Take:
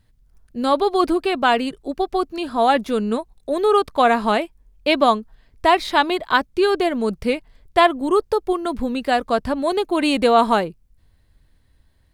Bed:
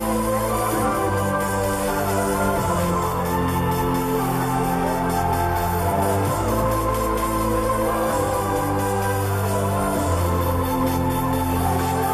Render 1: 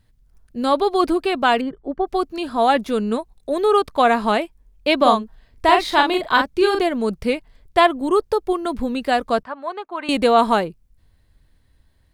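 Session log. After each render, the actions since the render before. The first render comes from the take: 1.61–2.07 polynomial smoothing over 41 samples; 4.97–6.83 doubler 41 ms -4.5 dB; 9.43–10.09 band-pass 1200 Hz, Q 1.7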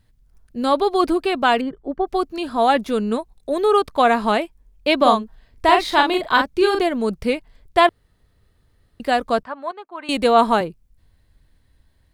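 7.89–9 room tone; 9.71–10.61 three-band expander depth 40%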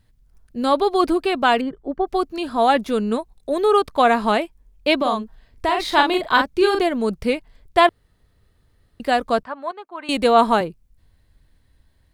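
4.97–5.8 compressor 2.5:1, threshold -18 dBFS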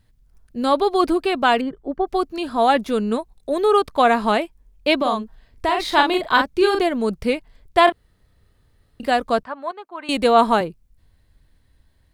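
7.84–9.11 doubler 32 ms -6.5 dB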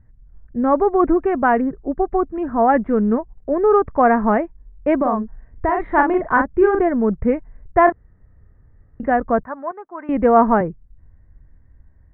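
elliptic low-pass 1900 Hz, stop band 60 dB; low shelf 250 Hz +11 dB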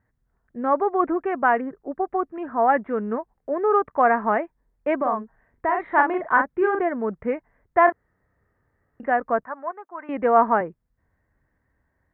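HPF 790 Hz 6 dB/oct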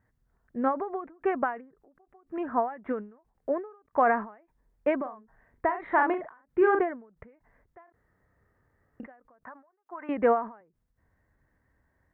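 limiter -12.5 dBFS, peak gain reduction 8 dB; ending taper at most 130 dB/s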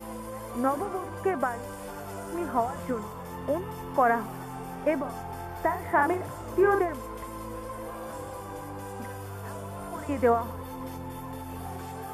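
add bed -17 dB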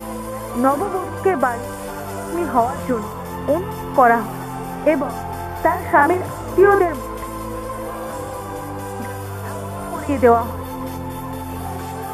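gain +10 dB

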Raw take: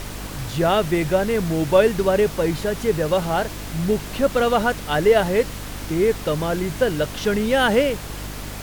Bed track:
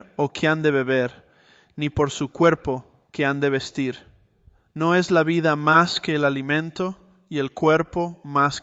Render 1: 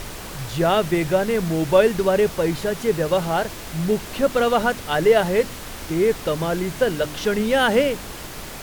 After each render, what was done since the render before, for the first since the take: de-hum 50 Hz, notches 6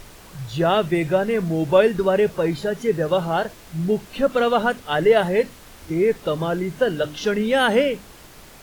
noise print and reduce 10 dB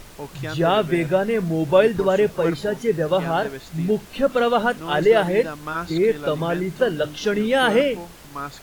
add bed track -12.5 dB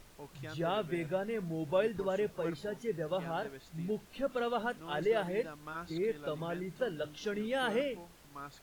gain -15 dB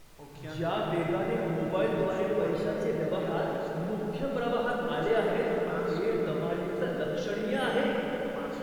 dark delay 0.153 s, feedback 83%, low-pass 3200 Hz, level -11.5 dB; shoebox room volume 210 m³, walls hard, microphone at 0.65 m

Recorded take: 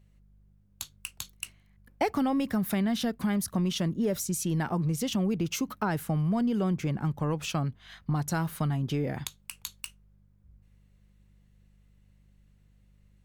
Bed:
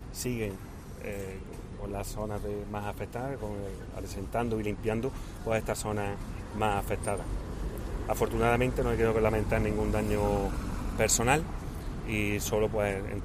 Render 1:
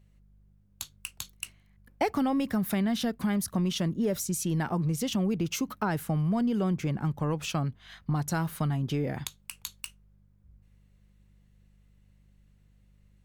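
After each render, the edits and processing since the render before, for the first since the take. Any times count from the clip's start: nothing audible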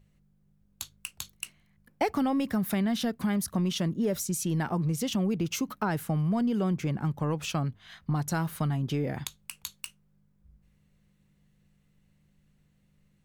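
de-hum 50 Hz, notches 2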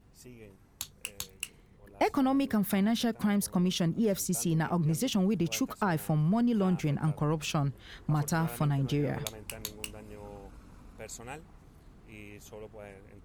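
add bed -18 dB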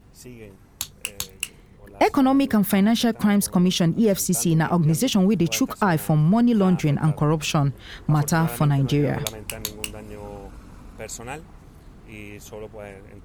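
gain +9 dB

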